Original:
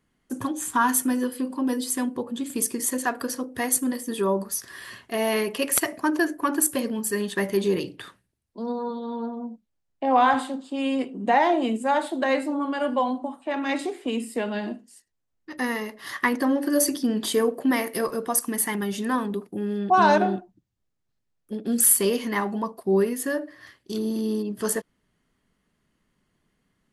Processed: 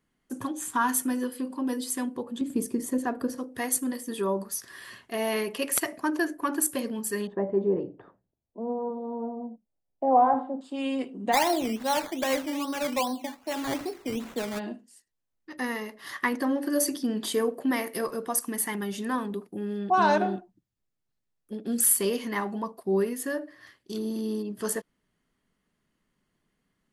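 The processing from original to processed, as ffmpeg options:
ffmpeg -i in.wav -filter_complex "[0:a]asettb=1/sr,asplit=3[link_01][link_02][link_03];[link_01]atrim=end=2.414[link_04];[link_02]atrim=start=2.41:end=3.38,asetpts=PTS-STARTPTS,afade=type=in:duration=0.004:curve=qsin,afade=type=out:start_time=0.966:duration=0.004:curve=qsin,tiltshelf=frequency=750:gain=8.5[link_05];[link_03]atrim=start=3.376[link_06];[link_04][link_05]acrossfade=duration=0.004:curve1=hsin:curve2=qsin[link_07];[link_07][link_06]acrossfade=duration=0.004:curve1=qsin:curve2=hsin,asettb=1/sr,asplit=3[link_08][link_09][link_10];[link_08]atrim=end=7.274[link_11];[link_09]atrim=start=7.27:end=10.61,asetpts=PTS-STARTPTS,afade=type=in:duration=0.004:curve=qsin,afade=type=out:start_time=3.336:duration=0.004:curve=qsin,lowpass=frequency=700:width_type=q:width=1.8[link_12];[link_10]atrim=start=10.606[link_13];[link_11][link_12]acrossfade=duration=0.004:curve1=hsin:curve2=qsin[link_14];[link_14][link_13]acrossfade=duration=0.004:curve1=qsin:curve2=hsin,asplit=3[link_15][link_16][link_17];[link_15]afade=type=out:start_time=11.32:duration=0.02[link_18];[link_16]acrusher=samples=13:mix=1:aa=0.000001:lfo=1:lforange=7.8:lforate=2.5,afade=type=in:start_time=11.32:duration=0.02,afade=type=out:start_time=14.58:duration=0.02[link_19];[link_17]afade=type=in:start_time=14.58:duration=0.02[link_20];[link_18][link_19][link_20]amix=inputs=3:normalize=0,equalizer=frequency=78:width_type=o:width=1.2:gain=-4,volume=-4dB" out.wav

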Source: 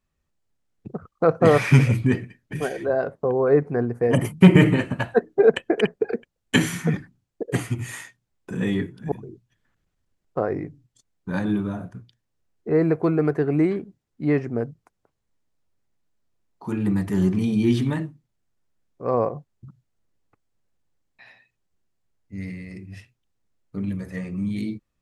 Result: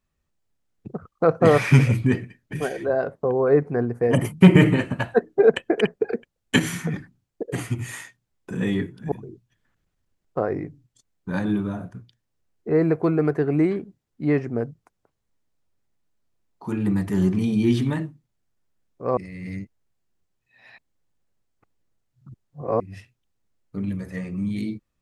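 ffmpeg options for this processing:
ffmpeg -i in.wav -filter_complex "[0:a]asettb=1/sr,asplit=3[link_01][link_02][link_03];[link_01]atrim=end=6.594[link_04];[link_02]atrim=start=6.59:end=7.58,asetpts=PTS-STARTPTS,afade=type=in:duration=0.004:curve=qsin,afade=type=out:start_time=0.986:duration=0.004:curve=qsin,acompressor=threshold=-21dB:ratio=6:attack=3.2:release=140:knee=1:detection=peak[link_05];[link_03]atrim=start=7.576[link_06];[link_04][link_05]acrossfade=duration=0.004:curve1=hsin:curve2=qsin[link_07];[link_07][link_06]acrossfade=duration=0.004:curve1=qsin:curve2=hsin,asplit=3[link_08][link_09][link_10];[link_08]atrim=end=19.172[link_11];[link_09]atrim=start=19.168:end=22.802,asetpts=PTS-STARTPTS,areverse[link_12];[link_10]atrim=start=22.798[link_13];[link_11][link_12]acrossfade=duration=0.004:curve1=hsin:curve2=hsin[link_14];[link_14][link_13]acrossfade=duration=0.004:curve1=hsin:curve2=hsin" out.wav

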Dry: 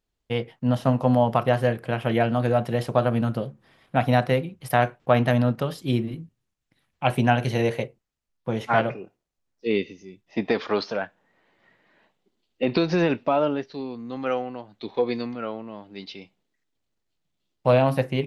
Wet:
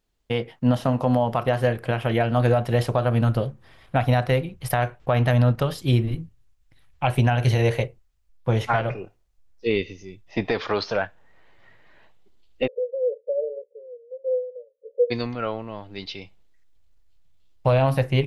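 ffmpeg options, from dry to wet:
ffmpeg -i in.wav -filter_complex "[0:a]asplit=3[link_01][link_02][link_03];[link_01]afade=type=out:start_time=12.66:duration=0.02[link_04];[link_02]asuperpass=centerf=500:order=12:qfactor=3.7,afade=type=in:start_time=12.66:duration=0.02,afade=type=out:start_time=15.1:duration=0.02[link_05];[link_03]afade=type=in:start_time=15.1:duration=0.02[link_06];[link_04][link_05][link_06]amix=inputs=3:normalize=0,asubboost=boost=10:cutoff=66,alimiter=limit=-15.5dB:level=0:latency=1:release=203,volume=5dB" out.wav

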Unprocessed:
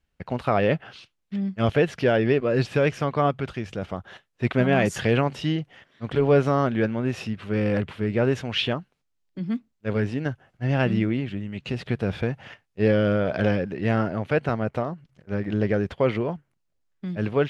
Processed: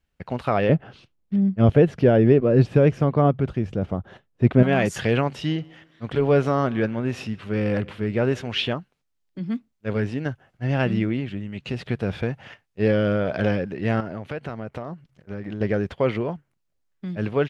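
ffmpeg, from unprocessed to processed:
ffmpeg -i in.wav -filter_complex "[0:a]asettb=1/sr,asplit=3[link_01][link_02][link_03];[link_01]atrim=end=0.694[link_04];[link_02]atrim=start=0.69:end=4.63,asetpts=PTS-STARTPTS,afade=type=in:duration=0.004:curve=qsin,afade=type=out:start_time=3.936:duration=0.004:curve=qsin,tiltshelf=frequency=820:gain=8[link_05];[link_03]atrim=start=4.626[link_06];[link_04][link_05]acrossfade=duration=0.004:curve1=hsin:curve2=qsin[link_07];[link_07][link_06]acrossfade=duration=0.004:curve1=qsin:curve2=hsin,asplit=3[link_08][link_09][link_10];[link_08]afade=type=out:start_time=5.48:duration=0.02[link_11];[link_09]asplit=2[link_12][link_13];[link_13]adelay=143,lowpass=frequency=4700:poles=1,volume=-23dB,asplit=2[link_14][link_15];[link_15]adelay=143,lowpass=frequency=4700:poles=1,volume=0.4,asplit=2[link_16][link_17];[link_17]adelay=143,lowpass=frequency=4700:poles=1,volume=0.4[link_18];[link_12][link_14][link_16][link_18]amix=inputs=4:normalize=0,afade=type=in:start_time=5.48:duration=0.02,afade=type=out:start_time=8.68:duration=0.02[link_19];[link_10]afade=type=in:start_time=8.68:duration=0.02[link_20];[link_11][link_19][link_20]amix=inputs=3:normalize=0,asettb=1/sr,asplit=3[link_21][link_22][link_23];[link_21]atrim=end=14.004[link_24];[link_22]atrim=start=14:end=15.61,asetpts=PTS-STARTPTS,afade=type=in:duration=0.004:curve=qsin,afade=type=out:start_time=1.606:duration=0.004:curve=qsin,acompressor=threshold=-28dB:ratio=4:attack=3.2:release=140:knee=1:detection=peak[link_25];[link_23]atrim=start=15.606[link_26];[link_24][link_25]acrossfade=duration=0.004:curve1=hsin:curve2=qsin[link_27];[link_27][link_26]acrossfade=duration=0.004:curve1=qsin:curve2=hsin" out.wav

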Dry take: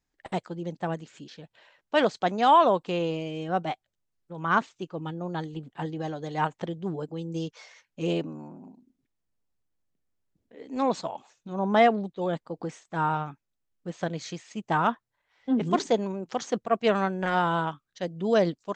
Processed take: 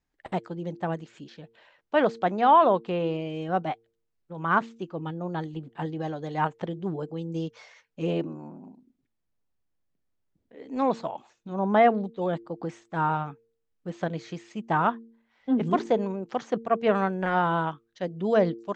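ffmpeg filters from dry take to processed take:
ffmpeg -i in.wav -filter_complex "[0:a]asettb=1/sr,asplit=3[link_01][link_02][link_03];[link_01]atrim=end=2.334[link_04];[link_02]atrim=start=2.33:end=3.3,asetpts=PTS-STARTPTS,afade=type=in:duration=0.004:curve=qsin,afade=type=out:start_time=0.966:duration=0.004:curve=qsin,equalizer=frequency=6400:width=2.6:gain=-7[link_05];[link_03]atrim=start=3.296[link_06];[link_04][link_05]acrossfade=duration=0.004:curve1=hsin:curve2=qsin[link_07];[link_07][link_06]acrossfade=duration=0.004:curve1=qsin:curve2=hsin,bandreject=frequency=114.4:width_type=h:width=4,bandreject=frequency=228.8:width_type=h:width=4,bandreject=frequency=343.2:width_type=h:width=4,bandreject=frequency=457.6:width_type=h:width=4,acrossover=split=2700[link_08][link_09];[link_09]acompressor=threshold=-45dB:ratio=4:attack=1:release=60[link_10];[link_08][link_10]amix=inputs=2:normalize=0,highshelf=frequency=5800:gain=-11,volume=1dB" out.wav

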